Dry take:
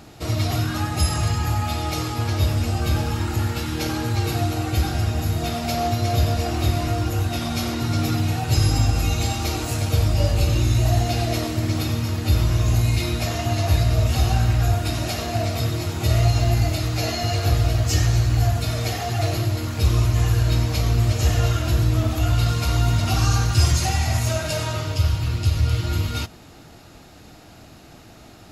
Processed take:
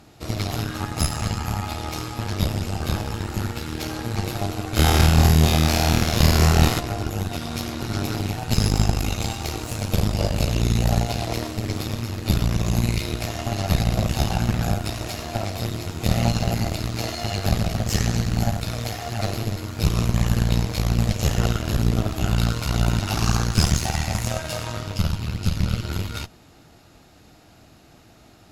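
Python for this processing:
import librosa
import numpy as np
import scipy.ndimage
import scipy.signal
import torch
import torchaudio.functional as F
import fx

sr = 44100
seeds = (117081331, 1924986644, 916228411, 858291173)

y = fx.room_flutter(x, sr, wall_m=4.3, rt60_s=1.5, at=(4.75, 6.79), fade=0.02)
y = fx.cheby_harmonics(y, sr, harmonics=(3, 4), levels_db=(-16, -11), full_scale_db=-3.5)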